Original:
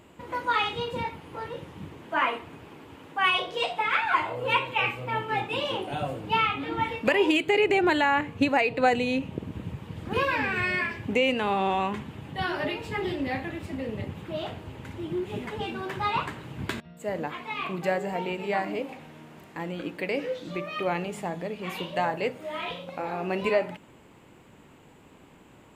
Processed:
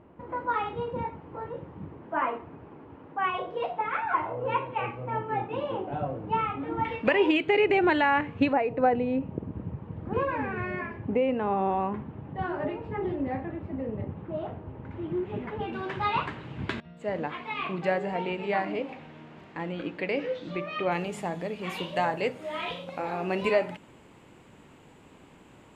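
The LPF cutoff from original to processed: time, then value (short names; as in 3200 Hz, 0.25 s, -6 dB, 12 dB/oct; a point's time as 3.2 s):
1200 Hz
from 6.85 s 2800 Hz
from 8.53 s 1100 Hz
from 14.91 s 1800 Hz
from 15.73 s 3900 Hz
from 20.92 s 11000 Hz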